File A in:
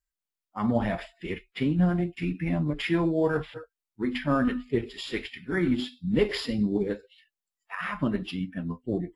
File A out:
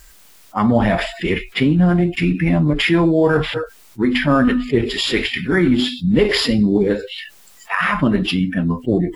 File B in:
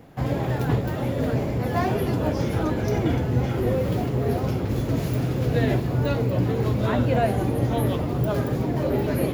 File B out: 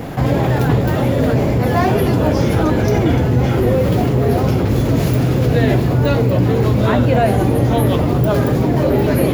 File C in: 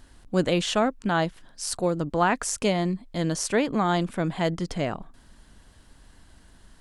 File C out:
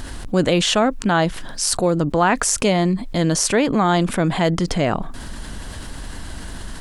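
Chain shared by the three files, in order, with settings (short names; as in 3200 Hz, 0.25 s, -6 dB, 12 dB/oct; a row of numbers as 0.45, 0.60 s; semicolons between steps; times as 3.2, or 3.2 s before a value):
fast leveller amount 50%; normalise peaks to -2 dBFS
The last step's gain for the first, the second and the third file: +7.5, +6.5, +4.5 dB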